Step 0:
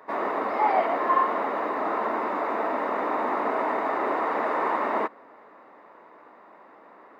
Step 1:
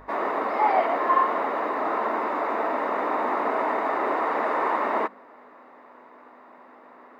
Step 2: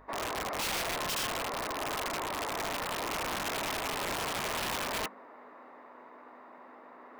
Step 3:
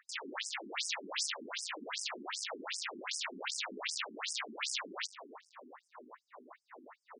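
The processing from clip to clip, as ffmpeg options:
-af "aeval=exprs='val(0)+0.00562*(sin(2*PI*50*n/s)+sin(2*PI*2*50*n/s)/2+sin(2*PI*3*50*n/s)/3+sin(2*PI*4*50*n/s)/4+sin(2*PI*5*50*n/s)/5)':c=same,lowshelf=f=250:g=-3.5,bandreject=f=50:t=h:w=6,bandreject=f=100:t=h:w=6,bandreject=f=150:t=h:w=6,bandreject=f=200:t=h:w=6,volume=1.19"
-af "aeval=exprs='(mod(9.44*val(0)+1,2)-1)/9.44':c=same,areverse,acompressor=mode=upward:threshold=0.0178:ratio=2.5,areverse,volume=0.376"
-filter_complex "[0:a]aecho=1:1:299|598|897:0.141|0.041|0.0119,acrossover=split=170|1600[s0][s1][s2];[s1]aeval=exprs='(mod(56.2*val(0)+1,2)-1)/56.2':c=same[s3];[s0][s3][s2]amix=inputs=3:normalize=0,afftfilt=real='re*between(b*sr/1024,270*pow(7100/270,0.5+0.5*sin(2*PI*2.6*pts/sr))/1.41,270*pow(7100/270,0.5+0.5*sin(2*PI*2.6*pts/sr))*1.41)':imag='im*between(b*sr/1024,270*pow(7100/270,0.5+0.5*sin(2*PI*2.6*pts/sr))/1.41,270*pow(7100/270,0.5+0.5*sin(2*PI*2.6*pts/sr))*1.41)':win_size=1024:overlap=0.75,volume=1.68"

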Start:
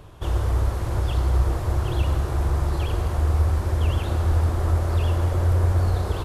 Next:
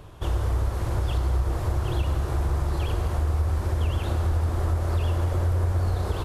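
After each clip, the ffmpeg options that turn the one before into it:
-af "acompressor=threshold=0.0891:ratio=3"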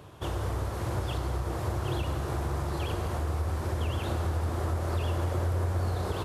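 -af "highpass=100,volume=0.891"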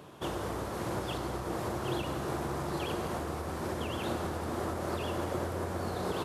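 -af "lowshelf=f=130:t=q:w=1.5:g=-10"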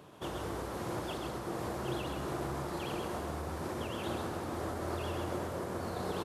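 -af "aecho=1:1:131:0.596,volume=0.631"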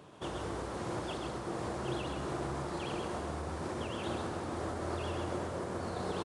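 -af "aresample=22050,aresample=44100"

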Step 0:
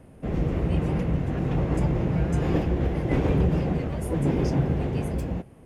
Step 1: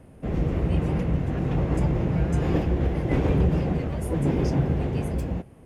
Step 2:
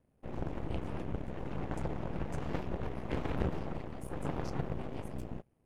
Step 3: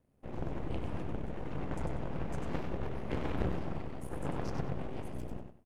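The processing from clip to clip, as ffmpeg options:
-af "equalizer=f=72:w=1.5:g=2"
-af "aeval=exprs='0.316*(cos(1*acos(clip(val(0)/0.316,-1,1)))-cos(1*PI/2))+0.0891*(cos(3*acos(clip(val(0)/0.316,-1,1)))-cos(3*PI/2))+0.0178*(cos(6*acos(clip(val(0)/0.316,-1,1)))-cos(6*PI/2))+0.0447*(cos(8*acos(clip(val(0)/0.316,-1,1)))-cos(8*PI/2))':c=same,volume=0.398"
-af "aecho=1:1:96|192|288:0.501|0.125|0.0313,volume=0.891"

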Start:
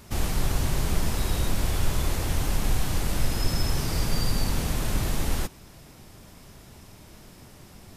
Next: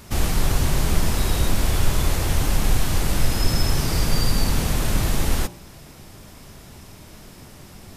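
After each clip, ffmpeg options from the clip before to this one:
-af "bandreject=f=58.29:t=h:w=4,bandreject=f=116.58:t=h:w=4,bandreject=f=174.87:t=h:w=4,bandreject=f=233.16:t=h:w=4,bandreject=f=291.45:t=h:w=4,bandreject=f=349.74:t=h:w=4,bandreject=f=408.03:t=h:w=4,bandreject=f=466.32:t=h:w=4,bandreject=f=524.61:t=h:w=4,bandreject=f=582.9:t=h:w=4,bandreject=f=641.19:t=h:w=4,bandreject=f=699.48:t=h:w=4,bandreject=f=757.77:t=h:w=4,bandreject=f=816.06:t=h:w=4,bandreject=f=874.35:t=h:w=4,bandreject=f=932.64:t=h:w=4,bandreject=f=990.93:t=h:w=4,bandreject=f=1049.22:t=h:w=4,volume=1.88"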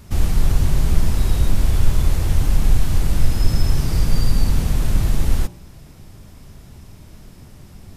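-af "lowshelf=f=210:g=11,volume=0.531"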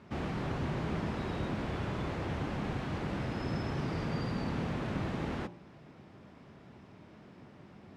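-af "highpass=200,lowpass=2300,volume=0.631"

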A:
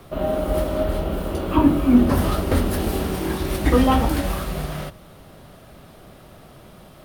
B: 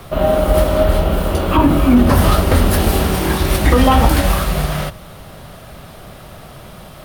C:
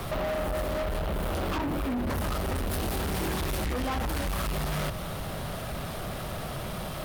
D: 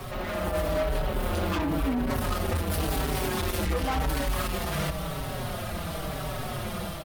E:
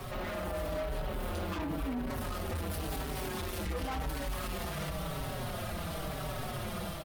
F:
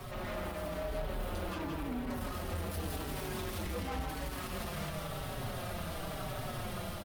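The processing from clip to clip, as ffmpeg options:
-af "equalizer=f=310:t=o:w=1.3:g=-6,alimiter=level_in=3.76:limit=0.891:release=50:level=0:latency=1,volume=0.891"
-af "acompressor=threshold=0.0891:ratio=6,asoftclip=type=tanh:threshold=0.0299,volume=1.41"
-filter_complex "[0:a]dynaudnorm=f=150:g=3:m=1.78,asplit=2[s0][s1];[s1]adelay=4.9,afreqshift=-0.94[s2];[s0][s2]amix=inputs=2:normalize=1"
-af "alimiter=level_in=1.06:limit=0.0631:level=0:latency=1:release=22,volume=0.944,volume=0.631"
-filter_complex "[0:a]flanger=delay=8.5:depth=2.8:regen=-64:speed=0.61:shape=sinusoidal,asplit=2[s0][s1];[s1]aecho=0:1:165:0.631[s2];[s0][s2]amix=inputs=2:normalize=0,volume=1.12"

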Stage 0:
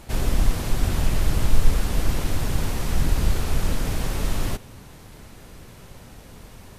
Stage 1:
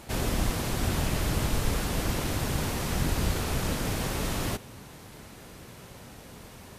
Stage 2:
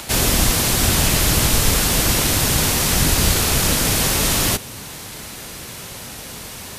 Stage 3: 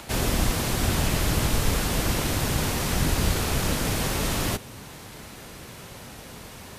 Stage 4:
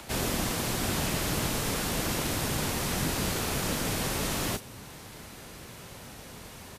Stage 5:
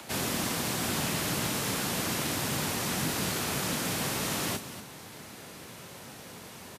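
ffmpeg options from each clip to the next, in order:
-af "highpass=f=110:p=1"
-filter_complex "[0:a]highshelf=f=2500:g=11.5,acrossover=split=130|580|5400[s0][s1][s2][s3];[s2]acompressor=mode=upward:threshold=0.00708:ratio=2.5[s4];[s0][s1][s4][s3]amix=inputs=4:normalize=0,volume=2.66"
-af "highshelf=f=2800:g=-8.5,volume=0.562"
-filter_complex "[0:a]acrossover=split=120|3900[s0][s1][s2];[s0]acompressor=threshold=0.0224:ratio=6[s3];[s2]asplit=2[s4][s5];[s5]adelay=35,volume=0.501[s6];[s4][s6]amix=inputs=2:normalize=0[s7];[s3][s1][s7]amix=inputs=3:normalize=0,volume=0.668"
-filter_complex "[0:a]highpass=120,acrossover=split=350|640|5900[s0][s1][s2][s3];[s1]alimiter=level_in=6.31:limit=0.0631:level=0:latency=1,volume=0.158[s4];[s0][s4][s2][s3]amix=inputs=4:normalize=0,aecho=1:1:241:0.237"

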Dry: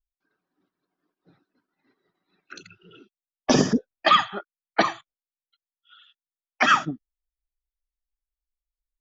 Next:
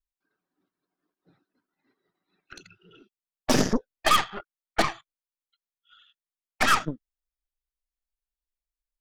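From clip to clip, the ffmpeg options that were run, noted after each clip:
-af "aeval=exprs='0.473*(cos(1*acos(clip(val(0)/0.473,-1,1)))-cos(1*PI/2))+0.0841*(cos(8*acos(clip(val(0)/0.473,-1,1)))-cos(8*PI/2))':c=same,volume=0.631"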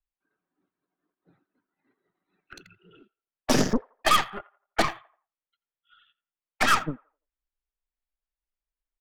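-filter_complex "[0:a]acrossover=split=140|680|3400[s0][s1][s2][s3];[s2]asplit=2[s4][s5];[s5]adelay=85,lowpass=f=1400:p=1,volume=0.178,asplit=2[s6][s7];[s7]adelay=85,lowpass=f=1400:p=1,volume=0.4,asplit=2[s8][s9];[s9]adelay=85,lowpass=f=1400:p=1,volume=0.4,asplit=2[s10][s11];[s11]adelay=85,lowpass=f=1400:p=1,volume=0.4[s12];[s4][s6][s8][s10][s12]amix=inputs=5:normalize=0[s13];[s3]aeval=exprs='sgn(val(0))*max(abs(val(0))-0.00224,0)':c=same[s14];[s0][s1][s13][s14]amix=inputs=4:normalize=0"

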